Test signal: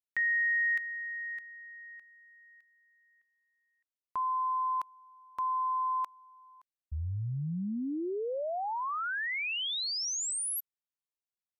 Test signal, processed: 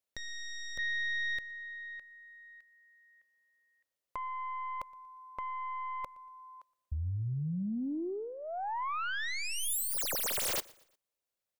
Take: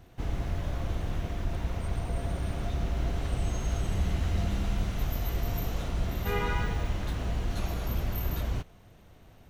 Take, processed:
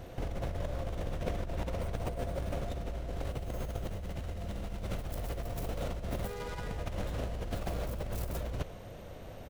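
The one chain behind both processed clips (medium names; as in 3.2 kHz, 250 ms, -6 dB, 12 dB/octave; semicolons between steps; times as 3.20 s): tracing distortion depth 0.31 ms; peaking EQ 540 Hz +10.5 dB 0.52 oct; compressor with a negative ratio -36 dBFS, ratio -1; feedback delay 118 ms, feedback 39%, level -23.5 dB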